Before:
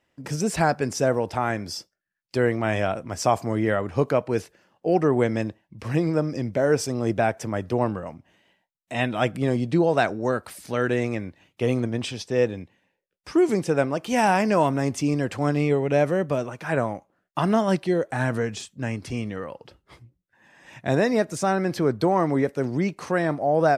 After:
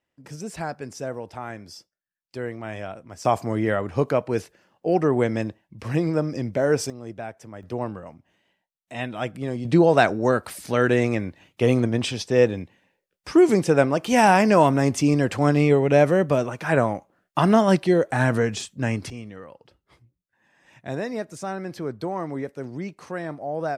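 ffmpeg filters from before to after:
ffmpeg -i in.wav -af "asetnsamples=nb_out_samples=441:pad=0,asendcmd='3.25 volume volume 0dB;6.9 volume volume -12.5dB;7.63 volume volume -5.5dB;9.65 volume volume 4dB;19.1 volume volume -8dB',volume=-9.5dB" out.wav

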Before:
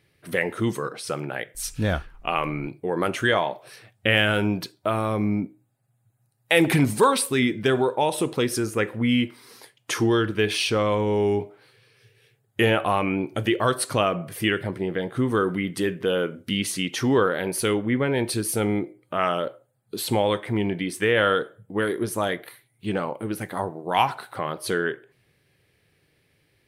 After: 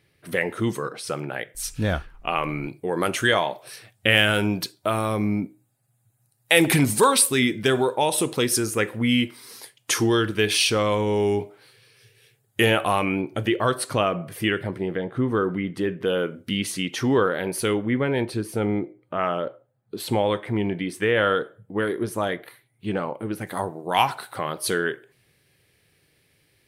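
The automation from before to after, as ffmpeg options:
ffmpeg -i in.wav -af "asetnsamples=nb_out_samples=441:pad=0,asendcmd='2.49 equalizer g 8.5;13.21 equalizer g -2.5;14.97 equalizer g -13;16.01 equalizer g -2;18.25 equalizer g -13.5;20 equalizer g -5;23.47 equalizer g 7',equalizer=frequency=11000:width_type=o:width=2.5:gain=0.5" out.wav

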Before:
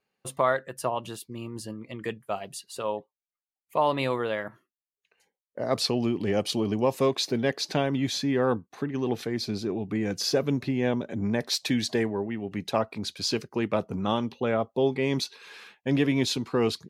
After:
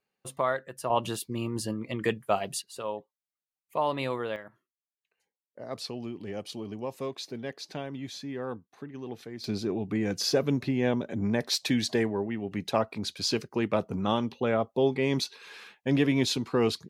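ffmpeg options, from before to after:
ffmpeg -i in.wav -af "asetnsamples=nb_out_samples=441:pad=0,asendcmd='0.9 volume volume 5dB;2.62 volume volume -4dB;4.36 volume volume -11dB;9.44 volume volume -0.5dB',volume=-4dB" out.wav

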